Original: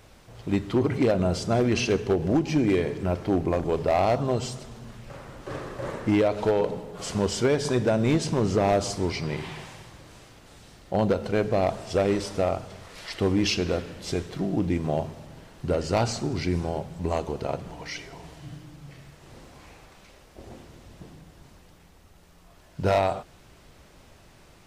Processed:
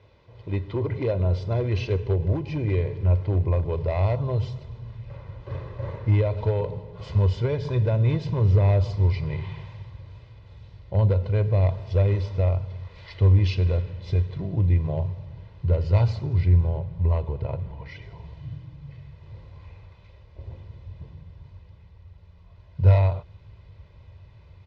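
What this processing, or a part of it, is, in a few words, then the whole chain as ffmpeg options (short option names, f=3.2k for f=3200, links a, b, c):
guitar cabinet: -filter_complex "[0:a]asettb=1/sr,asplit=3[a][b][c];[a]atrim=end=16.364[d];[b]atrim=start=16.36:end=18.02,asetpts=PTS-STARTPTS,afade=t=in:d=0.004:c=qsin,afade=t=out:st=1.656:d=0.004:c=qsin,aemphasis=mode=reproduction:type=50fm[e];[c]atrim=start=18.016[f];[d][e]acrossfade=d=0.004:c1=hsin:c2=qsin[g];[g][f]acrossfade=d=0.004:c1=qsin:c2=hsin,highpass=75,equalizer=f=97:t=q:w=4:g=8,equalizer=f=270:t=q:w=4:g=4,equalizer=f=1.5k:t=q:w=4:g=-8,equalizer=f=3k:t=q:w=4:g=-4,lowpass=f=3.9k:w=0.5412,lowpass=f=3.9k:w=1.3066,aecho=1:1:2:0.6,asubboost=boost=7:cutoff=110,volume=-5dB"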